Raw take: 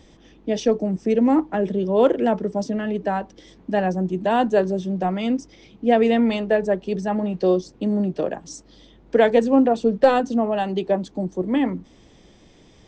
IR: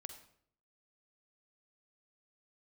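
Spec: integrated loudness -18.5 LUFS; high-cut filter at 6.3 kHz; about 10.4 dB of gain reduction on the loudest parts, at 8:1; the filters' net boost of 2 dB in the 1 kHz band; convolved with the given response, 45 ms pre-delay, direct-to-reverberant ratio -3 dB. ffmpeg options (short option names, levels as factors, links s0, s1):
-filter_complex "[0:a]lowpass=6300,equalizer=f=1000:t=o:g=3,acompressor=threshold=0.112:ratio=8,asplit=2[s0][s1];[1:a]atrim=start_sample=2205,adelay=45[s2];[s1][s2]afir=irnorm=-1:irlink=0,volume=2.51[s3];[s0][s3]amix=inputs=2:normalize=0,volume=1.33"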